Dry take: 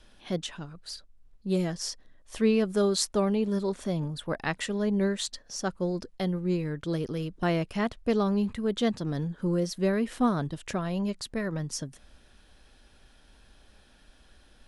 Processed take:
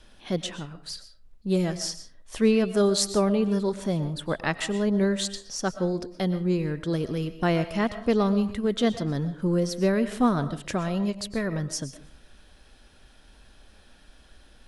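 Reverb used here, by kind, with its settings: algorithmic reverb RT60 0.43 s, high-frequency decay 0.6×, pre-delay 80 ms, DRR 12 dB; trim +3 dB

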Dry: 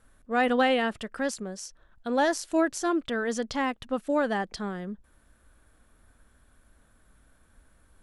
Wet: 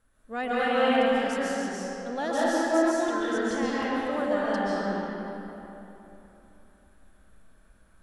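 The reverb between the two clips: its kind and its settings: algorithmic reverb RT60 3.3 s, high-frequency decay 0.65×, pre-delay 100 ms, DRR -8.5 dB; trim -8 dB

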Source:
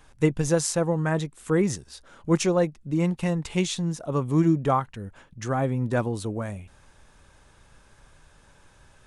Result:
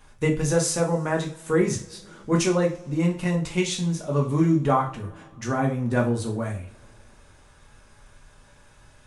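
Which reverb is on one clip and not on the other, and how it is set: two-slope reverb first 0.33 s, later 2.9 s, from -28 dB, DRR -1.5 dB; trim -1.5 dB

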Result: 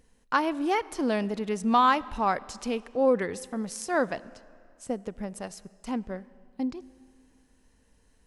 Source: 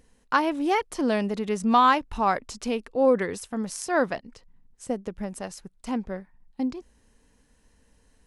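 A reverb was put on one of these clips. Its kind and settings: algorithmic reverb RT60 2.3 s, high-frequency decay 0.85×, pre-delay 20 ms, DRR 20 dB; trim -2.5 dB

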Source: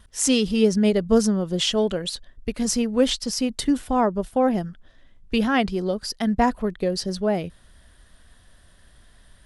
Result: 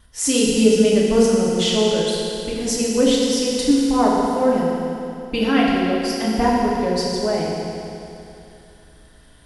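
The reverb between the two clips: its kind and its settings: FDN reverb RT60 2.8 s, high-frequency decay 0.95×, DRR -5 dB; trim -2 dB

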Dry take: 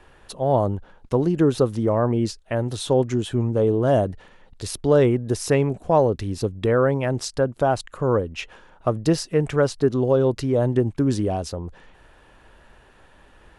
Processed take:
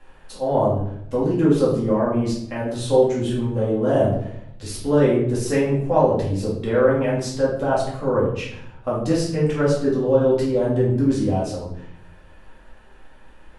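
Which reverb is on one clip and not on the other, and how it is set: simulated room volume 150 m³, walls mixed, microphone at 2.2 m; trim -8 dB

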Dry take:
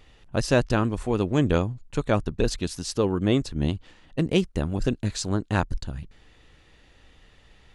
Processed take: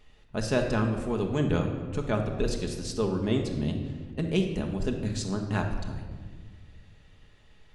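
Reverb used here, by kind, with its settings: simulated room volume 1800 m³, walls mixed, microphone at 1.4 m; trim -6.5 dB

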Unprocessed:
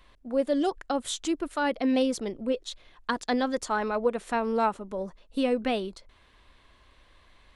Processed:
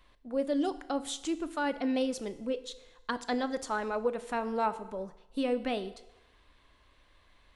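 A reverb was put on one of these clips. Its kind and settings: FDN reverb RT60 1 s, low-frequency decay 0.75×, high-frequency decay 0.9×, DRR 11.5 dB; trim -5 dB

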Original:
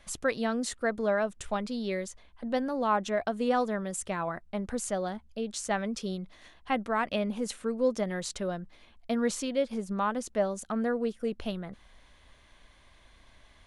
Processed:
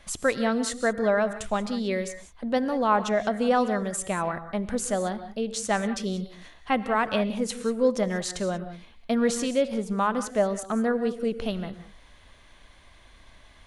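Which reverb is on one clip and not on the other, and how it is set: gated-style reverb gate 210 ms rising, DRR 11 dB; trim +4.5 dB

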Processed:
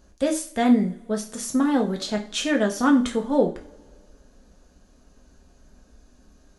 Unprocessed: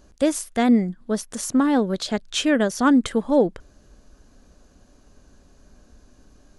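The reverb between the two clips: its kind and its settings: two-slope reverb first 0.35 s, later 2.2 s, from -27 dB, DRR 1.5 dB; trim -4 dB

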